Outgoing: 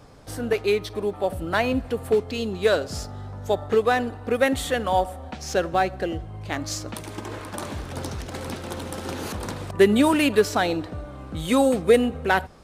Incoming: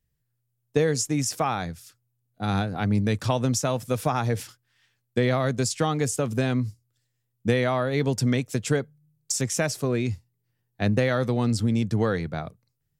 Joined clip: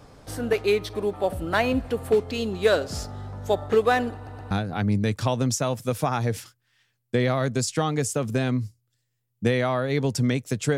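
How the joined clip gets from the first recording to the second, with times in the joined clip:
outgoing
0:04.15: stutter in place 0.12 s, 3 plays
0:04.51: continue with incoming from 0:02.54

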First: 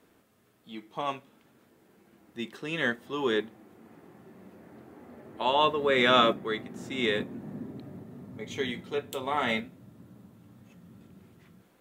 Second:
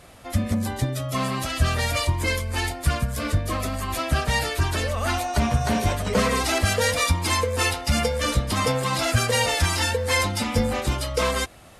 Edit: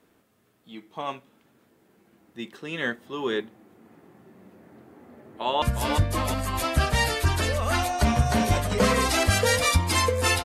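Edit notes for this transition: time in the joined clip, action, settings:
first
0:05.07–0:05.62: delay throw 360 ms, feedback 45%, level −5 dB
0:05.62: continue with second from 0:02.97

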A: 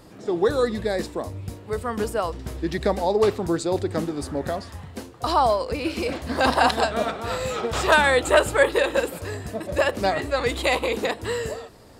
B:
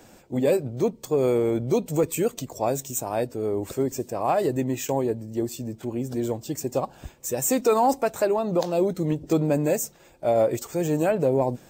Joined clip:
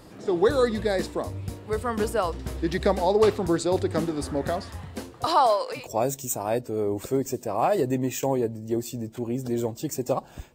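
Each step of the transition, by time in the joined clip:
A
0:05.24–0:05.88: high-pass filter 270 Hz → 720 Hz
0:05.80: continue with B from 0:02.46, crossfade 0.16 s

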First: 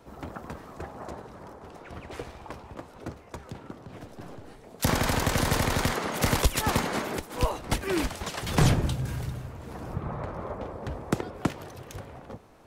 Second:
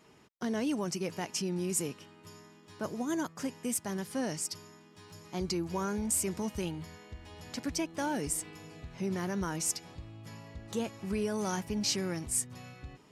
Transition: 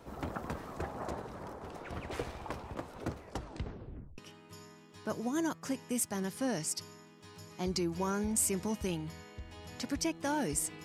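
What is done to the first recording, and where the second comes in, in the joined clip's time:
first
0:03.19: tape stop 0.99 s
0:04.18: continue with second from 0:01.92

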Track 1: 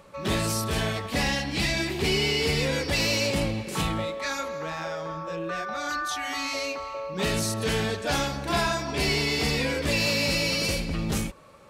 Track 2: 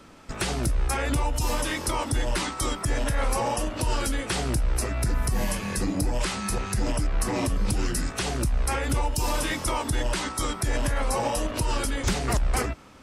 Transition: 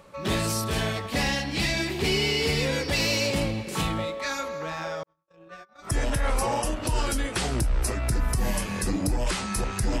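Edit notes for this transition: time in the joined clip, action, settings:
track 1
0:05.03–0:05.91: noise gate −28 dBFS, range −57 dB
0:05.86: continue with track 2 from 0:02.80, crossfade 0.10 s

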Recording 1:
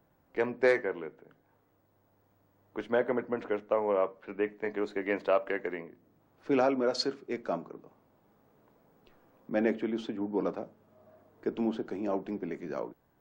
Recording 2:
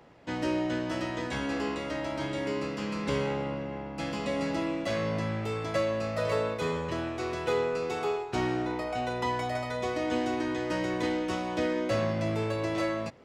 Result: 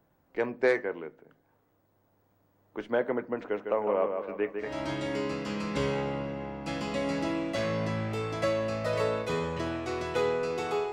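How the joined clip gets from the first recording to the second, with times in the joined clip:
recording 1
0:03.41–0:04.78: delay with a low-pass on its return 154 ms, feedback 44%, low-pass 3,400 Hz, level −6 dB
0:04.68: continue with recording 2 from 0:02.00, crossfade 0.20 s

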